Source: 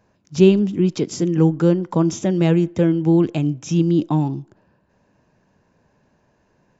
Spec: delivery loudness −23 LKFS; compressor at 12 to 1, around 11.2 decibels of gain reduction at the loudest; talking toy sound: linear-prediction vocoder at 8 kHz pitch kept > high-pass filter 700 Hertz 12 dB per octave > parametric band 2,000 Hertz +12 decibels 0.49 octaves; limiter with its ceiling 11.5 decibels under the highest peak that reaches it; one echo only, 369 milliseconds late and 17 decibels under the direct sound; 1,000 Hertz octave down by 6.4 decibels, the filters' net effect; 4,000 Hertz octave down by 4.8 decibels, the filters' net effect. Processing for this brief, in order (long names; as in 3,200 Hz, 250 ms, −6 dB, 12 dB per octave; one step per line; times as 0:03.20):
parametric band 1,000 Hz −6.5 dB
parametric band 4,000 Hz −9 dB
downward compressor 12 to 1, threshold −18 dBFS
brickwall limiter −21.5 dBFS
single-tap delay 369 ms −17 dB
linear-prediction vocoder at 8 kHz pitch kept
high-pass filter 700 Hz 12 dB per octave
parametric band 2,000 Hz +12 dB 0.49 octaves
level +21 dB